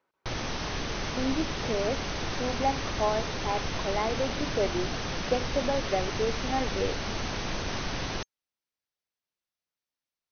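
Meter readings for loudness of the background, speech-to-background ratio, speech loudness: -33.0 LUFS, 1.0 dB, -32.0 LUFS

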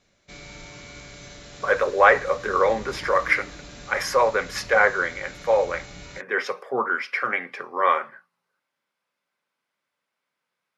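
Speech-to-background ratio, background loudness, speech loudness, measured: 19.0 dB, -41.5 LUFS, -22.5 LUFS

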